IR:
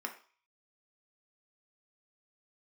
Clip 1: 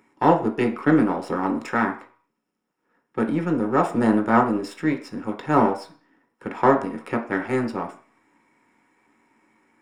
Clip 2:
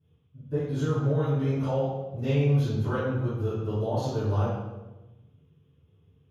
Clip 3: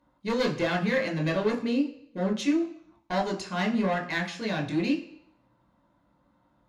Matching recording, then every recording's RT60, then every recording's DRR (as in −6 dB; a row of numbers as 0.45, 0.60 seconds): 1; 0.45 s, 1.1 s, non-exponential decay; 2.5, −17.5, 1.0 decibels